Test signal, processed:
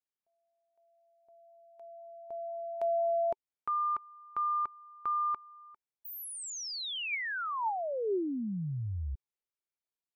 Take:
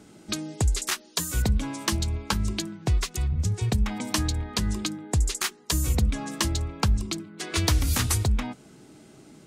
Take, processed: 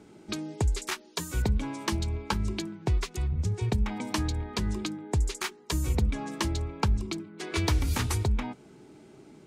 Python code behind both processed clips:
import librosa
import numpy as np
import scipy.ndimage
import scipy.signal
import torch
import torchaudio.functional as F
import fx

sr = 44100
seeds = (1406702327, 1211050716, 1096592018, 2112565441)

y = fx.high_shelf(x, sr, hz=5200.0, db=-8.5)
y = fx.small_body(y, sr, hz=(390.0, 890.0, 2300.0), ring_ms=30, db=6)
y = F.gain(torch.from_numpy(y), -3.0).numpy()